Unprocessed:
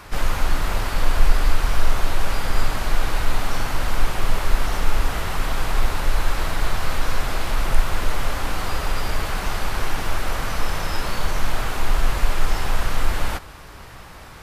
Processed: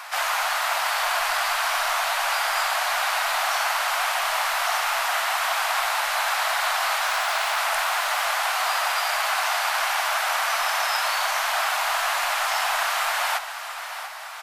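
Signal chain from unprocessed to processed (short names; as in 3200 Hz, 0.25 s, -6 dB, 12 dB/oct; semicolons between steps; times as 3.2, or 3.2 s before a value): 7.07–7.58 self-modulated delay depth 0.21 ms; elliptic high-pass 670 Hz, stop band 50 dB; on a send: feedback echo 0.689 s, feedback 39%, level -11.5 dB; on the sum: gain +6.5 dB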